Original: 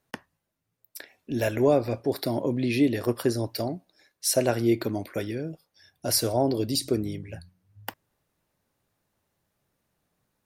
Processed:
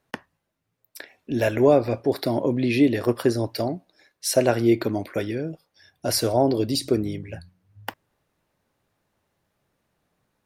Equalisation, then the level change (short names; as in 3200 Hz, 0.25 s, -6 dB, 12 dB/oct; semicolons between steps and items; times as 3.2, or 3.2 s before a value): tone controls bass -2 dB, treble -4 dB; high shelf 11000 Hz -5 dB; +4.5 dB